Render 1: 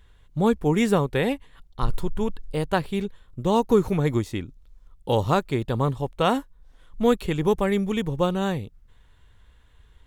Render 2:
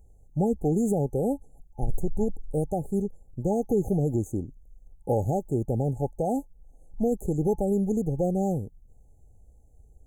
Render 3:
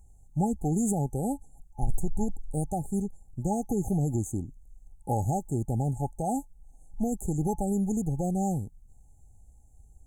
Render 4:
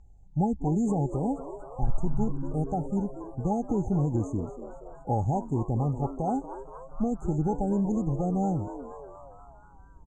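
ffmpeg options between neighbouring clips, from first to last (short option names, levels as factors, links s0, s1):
-af "alimiter=limit=0.188:level=0:latency=1:release=65,afftfilt=real='re*(1-between(b*sr/4096,860,6100))':imag='im*(1-between(b*sr/4096,860,6100))':win_size=4096:overlap=0.75"
-af "equalizer=f=500:t=o:w=1:g=-12,equalizer=f=1000:t=o:w=1:g=9,equalizer=f=4000:t=o:w=1:g=-6,equalizer=f=8000:t=o:w=1:g=10"
-filter_complex "[0:a]lowpass=f=5100:w=0.5412,lowpass=f=5100:w=1.3066,asplit=2[s0][s1];[s1]asplit=6[s2][s3][s4][s5][s6][s7];[s2]adelay=238,afreqshift=130,volume=0.211[s8];[s3]adelay=476,afreqshift=260,volume=0.123[s9];[s4]adelay=714,afreqshift=390,volume=0.0708[s10];[s5]adelay=952,afreqshift=520,volume=0.0412[s11];[s6]adelay=1190,afreqshift=650,volume=0.024[s12];[s7]adelay=1428,afreqshift=780,volume=0.0138[s13];[s8][s9][s10][s11][s12][s13]amix=inputs=6:normalize=0[s14];[s0][s14]amix=inputs=2:normalize=0,volume=1.12"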